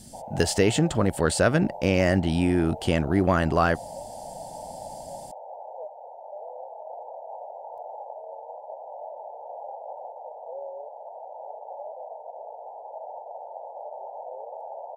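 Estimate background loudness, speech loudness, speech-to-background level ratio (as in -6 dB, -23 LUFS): -39.5 LUFS, -23.5 LUFS, 16.0 dB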